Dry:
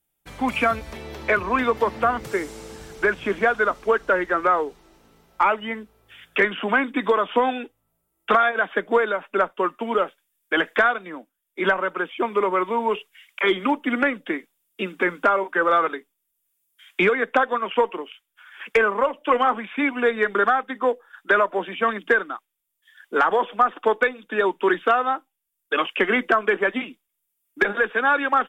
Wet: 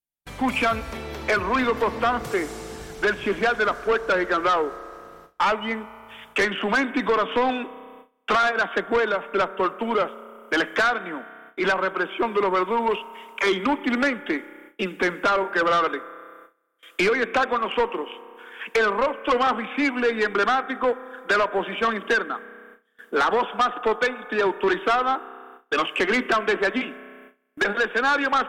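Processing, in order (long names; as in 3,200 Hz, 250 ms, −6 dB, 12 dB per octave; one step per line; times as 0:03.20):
spring reverb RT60 2.7 s, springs 31 ms, chirp 70 ms, DRR 18 dB
noise gate with hold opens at −38 dBFS
soft clipping −18 dBFS, distortion −11 dB
level +2.5 dB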